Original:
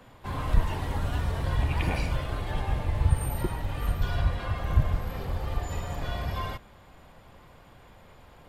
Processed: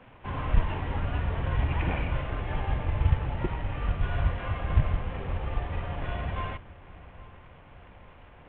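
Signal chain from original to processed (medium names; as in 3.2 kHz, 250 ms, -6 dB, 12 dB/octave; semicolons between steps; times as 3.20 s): CVSD coder 16 kbps; on a send: filtered feedback delay 814 ms, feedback 53%, level -19.5 dB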